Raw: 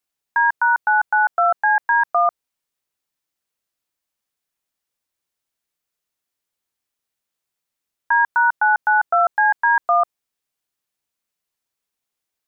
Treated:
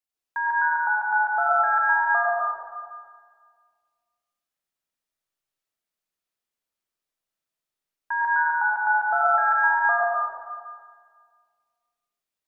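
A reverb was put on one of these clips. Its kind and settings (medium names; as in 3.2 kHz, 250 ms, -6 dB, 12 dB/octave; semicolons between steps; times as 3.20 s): algorithmic reverb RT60 1.8 s, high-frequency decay 0.65×, pre-delay 65 ms, DRR -5.5 dB; trim -10.5 dB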